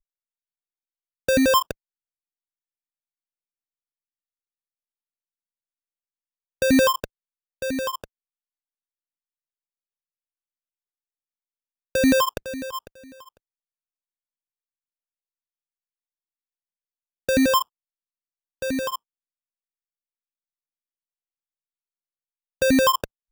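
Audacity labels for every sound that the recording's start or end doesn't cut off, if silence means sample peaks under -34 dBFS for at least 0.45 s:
1.290000	1.710000	sound
6.620000	7.040000	sound
7.620000	8.040000	sound
11.950000	12.870000	sound
17.290000	17.620000	sound
18.620000	18.960000	sound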